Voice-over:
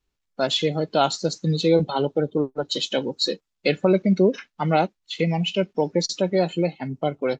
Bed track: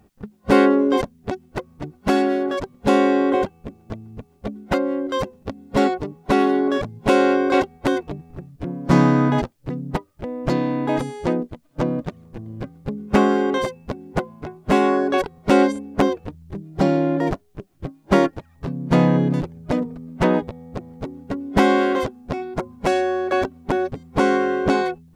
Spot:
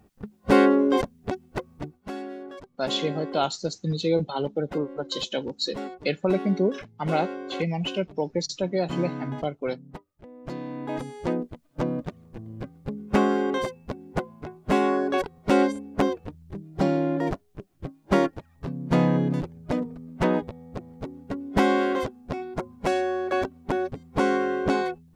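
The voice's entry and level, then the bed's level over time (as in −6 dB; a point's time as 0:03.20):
2.40 s, −5.0 dB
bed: 0:01.83 −3 dB
0:02.08 −17 dB
0:10.30 −17 dB
0:11.34 −5 dB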